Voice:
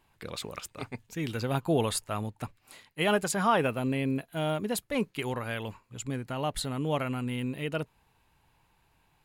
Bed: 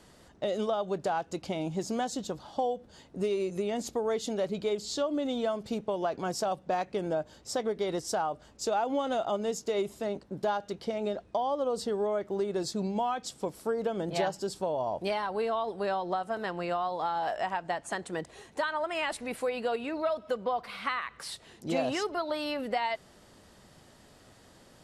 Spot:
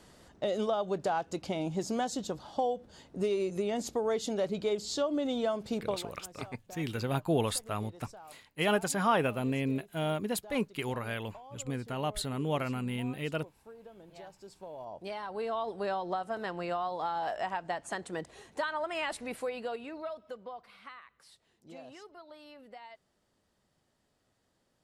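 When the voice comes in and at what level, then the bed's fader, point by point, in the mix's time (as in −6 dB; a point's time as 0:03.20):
5.60 s, −2.0 dB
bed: 0:05.90 −0.5 dB
0:06.10 −20.5 dB
0:14.17 −20.5 dB
0:15.61 −2.5 dB
0:19.26 −2.5 dB
0:21.17 −19 dB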